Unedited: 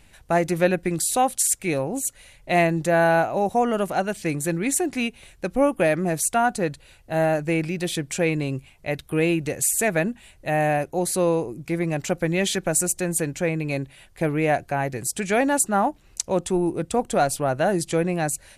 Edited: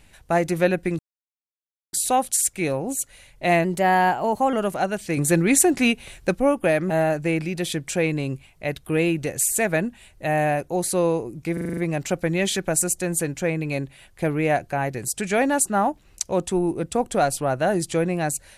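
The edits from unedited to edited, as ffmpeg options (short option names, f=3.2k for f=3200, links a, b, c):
-filter_complex "[0:a]asplit=13[a][b][c][d][e][f][g][h][i][j][k][l][m];[a]atrim=end=0.99,asetpts=PTS-STARTPTS,afade=t=out:st=0.986:d=0.004:c=hsin,apad=pad_dur=0.94[n];[b]atrim=start=0.99:end=2.704,asetpts=PTS-STARTPTS,afade=t=in:d=0.004:c=hsin[o];[c]atrim=start=2.7:end=3.69,asetpts=PTS-STARTPTS,asetrate=48951,aresample=44100,atrim=end_sample=39332,asetpts=PTS-STARTPTS[p];[d]atrim=start=3.686:end=4.332[q];[e]atrim=start=4.328:end=5.512,asetpts=PTS-STARTPTS,volume=6dB[r];[f]atrim=start=5.508:end=6.062[s];[g]atrim=start=7.128:end=11.802[t];[h]atrim=start=11.758:end=11.802[u];[i]atrim=start=11.758:end=11.802[v];[j]atrim=start=11.758:end=11.802[w];[k]atrim=start=11.758:end=11.802[x];[l]atrim=start=11.758:end=11.802[y];[m]atrim=start=11.758[z];[n][o]concat=n=2:v=0:a=1[aa];[aa][p]acrossfade=d=0.004:c1=hsin:c2=hsin[ab];[ab][q]acrossfade=d=0.004:c1=hsin:c2=hsin[ac];[ac][r]acrossfade=d=0.004:c1=hsin:c2=hsin[ad];[ad][s]acrossfade=d=0.004:c1=hsin:c2=hsin[ae];[ae][t]acrossfade=d=0.004:c1=hsin:c2=hsin[af];[af][u]acrossfade=d=0.004:c1=hsin:c2=hsin[ag];[ag][v]acrossfade=d=0.004:c1=hsin:c2=hsin[ah];[ah][w]acrossfade=d=0.004:c1=hsin:c2=hsin[ai];[ai][x]acrossfade=d=0.004:c1=hsin:c2=hsin[aj];[aj][y]acrossfade=d=0.004:c1=hsin:c2=hsin[ak];[ak][z]acrossfade=d=0.004:c1=hsin:c2=hsin"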